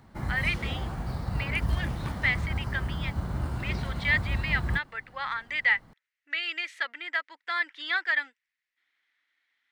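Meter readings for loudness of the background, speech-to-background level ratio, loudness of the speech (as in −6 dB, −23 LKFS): −33.0 LKFS, 3.0 dB, −30.0 LKFS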